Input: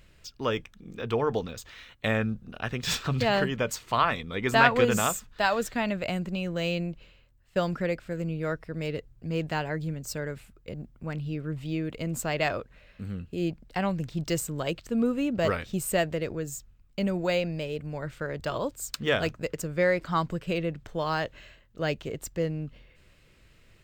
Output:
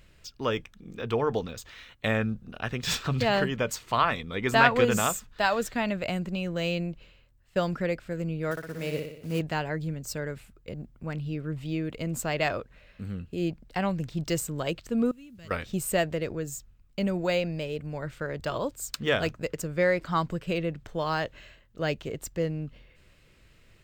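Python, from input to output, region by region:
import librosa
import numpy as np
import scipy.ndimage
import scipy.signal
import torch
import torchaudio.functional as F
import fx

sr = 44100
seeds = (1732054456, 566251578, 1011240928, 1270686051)

y = fx.chain(x, sr, fx.block_float(bits=5),
    fx.low_shelf(hz=87.0, db=-11.0),
    fx.room_flutter(wall_m=10.4, rt60_s=0.71), at=(8.51, 9.41))
y = fx.chain(y, sr, fx.tone_stack(knobs='6-0-2'),
    fx.quant_dither(seeds[0], bits=12, dither='none'), at=(15.11, 15.51))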